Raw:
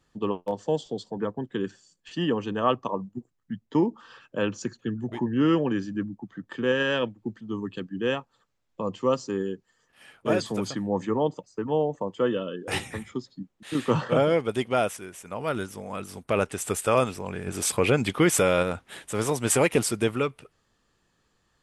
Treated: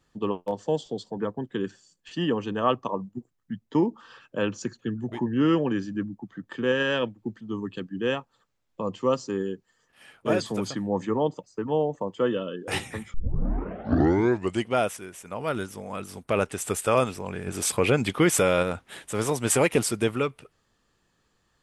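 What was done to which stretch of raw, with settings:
0:13.14: tape start 1.58 s

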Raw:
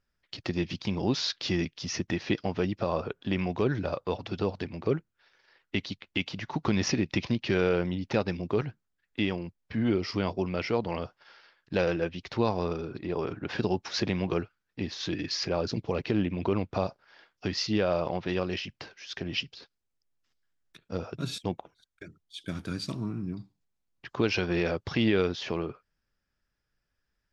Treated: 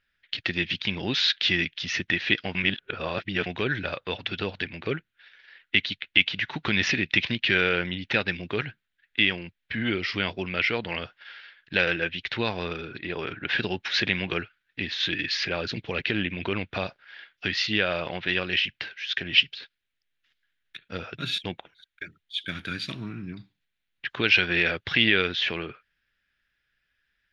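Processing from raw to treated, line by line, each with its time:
0:02.55–0:03.46: reverse
whole clip: flat-topped bell 2,400 Hz +15.5 dB; notch filter 7,900 Hz, Q 8.1; level −2.5 dB

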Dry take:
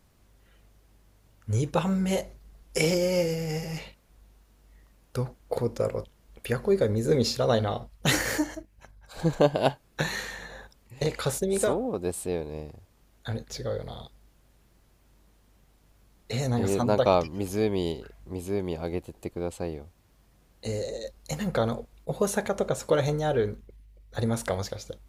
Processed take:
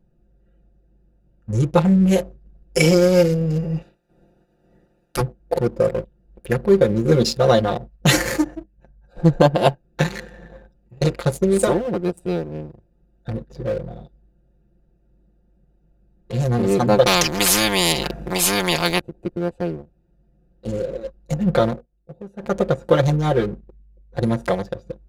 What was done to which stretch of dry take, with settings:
0:03.81–0:05.20: ceiling on every frequency bin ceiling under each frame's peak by 27 dB
0:17.06–0:19.01: every bin compressed towards the loudest bin 4 to 1
0:21.68–0:22.52: duck −15.5 dB, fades 0.15 s
whole clip: adaptive Wiener filter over 41 samples; comb filter 5.7 ms, depth 91%; leveller curve on the samples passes 1; level +3 dB

